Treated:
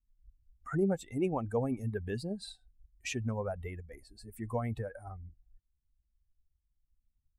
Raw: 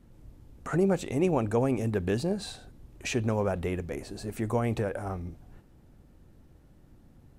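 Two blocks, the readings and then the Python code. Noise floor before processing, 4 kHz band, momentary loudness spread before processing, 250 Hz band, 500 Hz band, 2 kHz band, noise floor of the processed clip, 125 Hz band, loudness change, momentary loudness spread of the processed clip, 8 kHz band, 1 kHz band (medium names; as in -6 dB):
-58 dBFS, -6.0 dB, 12 LU, -6.5 dB, -7.0 dB, -6.5 dB, -81 dBFS, -6.0 dB, -6.0 dB, 20 LU, -6.5 dB, -6.5 dB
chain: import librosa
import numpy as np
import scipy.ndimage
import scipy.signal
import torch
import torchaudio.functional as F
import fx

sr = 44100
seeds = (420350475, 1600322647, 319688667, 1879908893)

y = fx.bin_expand(x, sr, power=2.0)
y = y * librosa.db_to_amplitude(-2.5)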